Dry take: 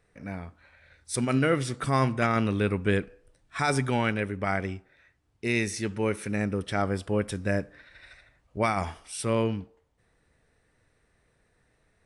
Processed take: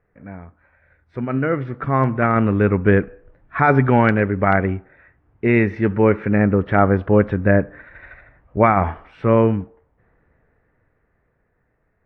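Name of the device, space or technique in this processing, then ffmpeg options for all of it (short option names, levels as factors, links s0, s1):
action camera in a waterproof case: -af "lowpass=f=1900:w=0.5412,lowpass=f=1900:w=1.3066,dynaudnorm=f=270:g=17:m=5.01,volume=1.12" -ar 32000 -c:a aac -b:a 64k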